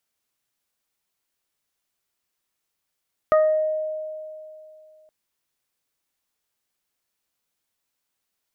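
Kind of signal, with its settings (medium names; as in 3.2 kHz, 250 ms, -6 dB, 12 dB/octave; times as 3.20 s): additive tone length 1.77 s, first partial 622 Hz, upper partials -4/-17 dB, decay 2.70 s, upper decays 0.34/0.67 s, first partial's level -13 dB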